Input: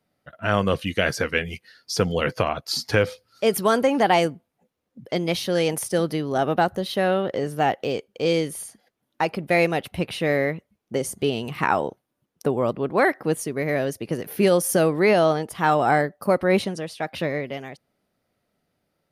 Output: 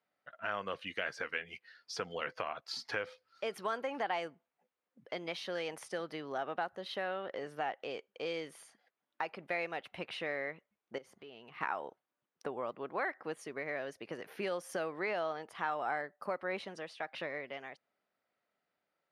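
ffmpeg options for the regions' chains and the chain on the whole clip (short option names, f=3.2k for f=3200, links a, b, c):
-filter_complex "[0:a]asettb=1/sr,asplit=3[a][b][c];[a]atrim=end=10.984[d];[b]atrim=start=10.98:end=11.61,asetpts=PTS-STARTPTS,afade=t=in:d=0.004:c=qsin,afade=t=out:st=0.626:d=0.004:c=qsin,equalizer=f=8.2k:t=o:w=1.1:g=-10.5,acompressor=threshold=-39dB:ratio=3:attack=3.2:release=140:knee=1:detection=peak[e];[c]atrim=start=11.606[f];[d][e]acrossfade=d=0.004:c1=hsin:c2=qsin[g];[g][f]acrossfade=d=0.004:c1=qsin:c2=hsin,lowpass=1.5k,aderivative,acompressor=threshold=-49dB:ratio=2,volume=11dB"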